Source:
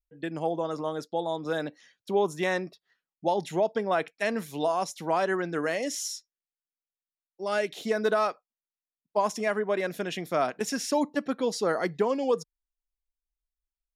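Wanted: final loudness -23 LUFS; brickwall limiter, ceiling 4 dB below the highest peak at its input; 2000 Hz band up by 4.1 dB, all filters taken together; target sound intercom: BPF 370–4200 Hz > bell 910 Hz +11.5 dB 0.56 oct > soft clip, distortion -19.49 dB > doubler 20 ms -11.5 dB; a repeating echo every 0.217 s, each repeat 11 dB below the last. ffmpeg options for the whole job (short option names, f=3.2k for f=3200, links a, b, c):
-filter_complex "[0:a]equalizer=f=2k:t=o:g=4,alimiter=limit=-17dB:level=0:latency=1,highpass=370,lowpass=4.2k,equalizer=f=910:t=o:w=0.56:g=11.5,aecho=1:1:217|434|651:0.282|0.0789|0.0221,asoftclip=threshold=-13.5dB,asplit=2[a][b];[b]adelay=20,volume=-11.5dB[c];[a][c]amix=inputs=2:normalize=0,volume=4.5dB"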